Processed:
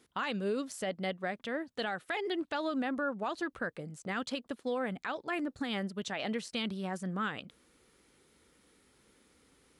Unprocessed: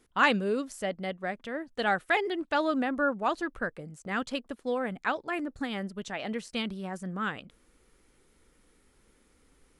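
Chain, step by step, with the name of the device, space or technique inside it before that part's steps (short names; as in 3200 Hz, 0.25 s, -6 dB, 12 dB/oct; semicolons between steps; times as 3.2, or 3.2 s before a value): broadcast voice chain (HPF 84 Hz 12 dB/oct; de-esser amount 60%; compressor 5:1, threshold -29 dBFS, peak gain reduction 10.5 dB; bell 3900 Hz +4 dB 0.89 oct; limiter -25 dBFS, peak gain reduction 8 dB)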